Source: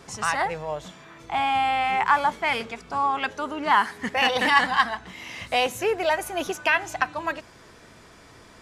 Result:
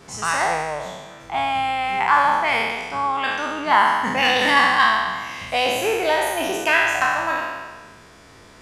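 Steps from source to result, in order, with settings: spectral trails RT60 1.42 s

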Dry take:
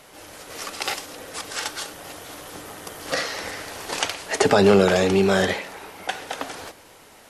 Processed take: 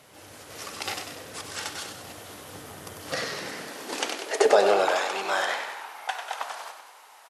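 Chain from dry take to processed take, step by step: de-hum 92.73 Hz, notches 27; frequency-shifting echo 96 ms, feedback 56%, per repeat -54 Hz, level -7 dB; high-pass sweep 94 Hz -> 890 Hz, 3.07–5; gain -5.5 dB

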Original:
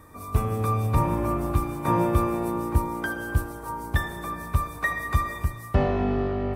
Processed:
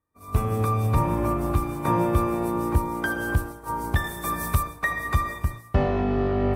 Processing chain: recorder AGC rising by 12 dB/s; 4.04–4.63 high shelf 4800 Hz +11 dB; expander -28 dBFS

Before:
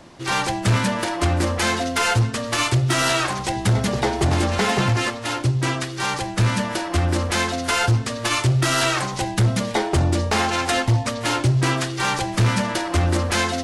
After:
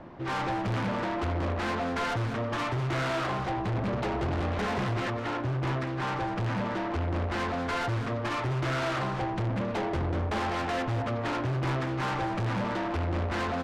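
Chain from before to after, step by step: LPF 1600 Hz 12 dB/oct; soft clip -28 dBFS, distortion -6 dB; on a send: echo 0.199 s -9.5 dB; on the sum: Doppler distortion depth 0.33 ms

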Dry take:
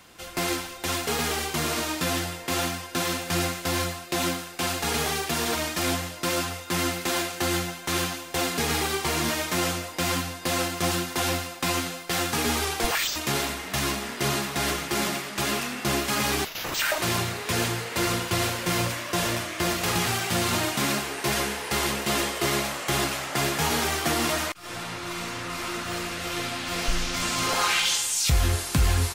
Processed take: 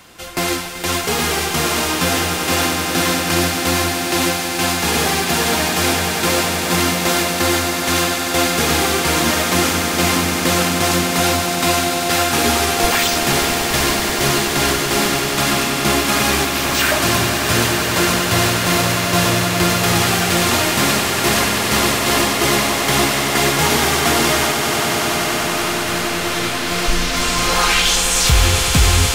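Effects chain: swelling echo 96 ms, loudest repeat 8, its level -11.5 dB; gain +7.5 dB

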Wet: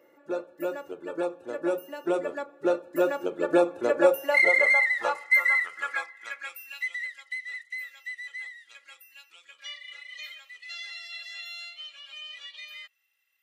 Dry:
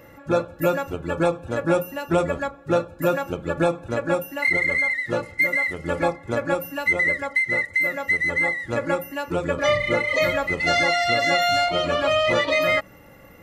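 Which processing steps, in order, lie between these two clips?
Doppler pass-by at 4.64, 7 m/s, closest 5.7 m; high-pass sweep 370 Hz -> 3000 Hz, 3.81–6.9

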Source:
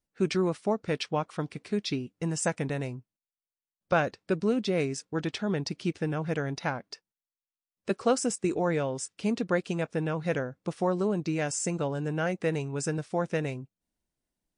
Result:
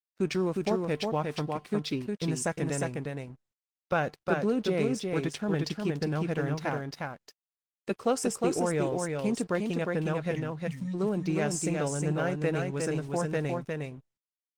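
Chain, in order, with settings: spectral delete 10.31–10.94, 260–1800 Hz; in parallel at -3 dB: limiter -22 dBFS, peak gain reduction 9 dB; on the sum: resonator 150 Hz, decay 0.48 s, harmonics odd, mix 40%; crossover distortion -51 dBFS; on a send: echo 0.358 s -3.5 dB; on the sum: Opus 20 kbps 48000 Hz

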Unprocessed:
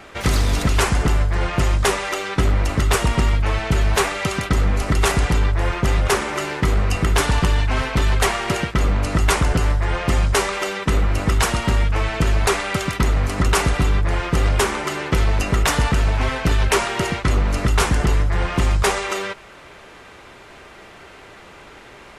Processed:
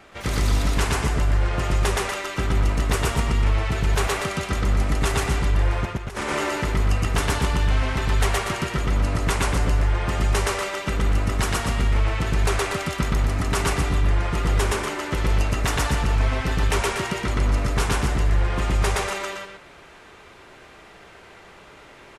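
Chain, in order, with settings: 5.85–6.5 negative-ratio compressor -23 dBFS, ratio -0.5; loudspeakers at several distances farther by 41 m 0 dB, 82 m -7 dB; gain -7.5 dB

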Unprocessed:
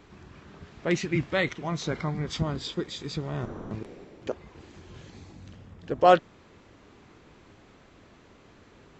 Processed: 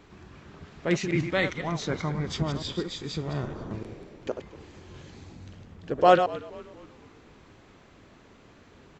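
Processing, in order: reverse delay 0.101 s, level -8 dB; frequency-shifting echo 0.236 s, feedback 46%, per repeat -68 Hz, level -19 dB

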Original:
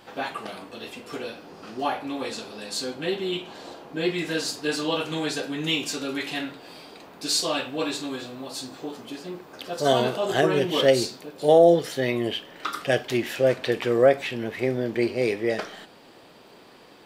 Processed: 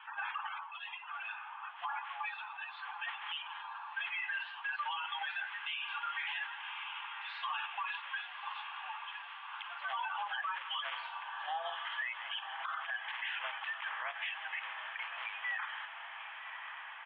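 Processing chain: bin magnitudes rounded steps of 30 dB; Chebyshev band-pass 860–3300 Hz, order 5; high shelf 2600 Hz -9.5 dB; echo 0.165 s -19.5 dB; in parallel at -2 dB: level quantiser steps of 22 dB; on the sum: diffused feedback echo 1.137 s, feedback 68%, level -14 dB; compressor, threshold -32 dBFS, peak gain reduction 8 dB; limiter -32 dBFS, peak gain reduction 11 dB; gain +2.5 dB

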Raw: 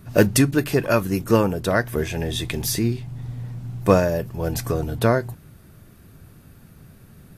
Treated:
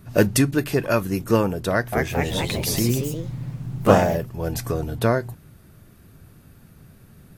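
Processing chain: 1.7–4.32 echoes that change speed 0.224 s, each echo +2 st, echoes 3; gain -1.5 dB

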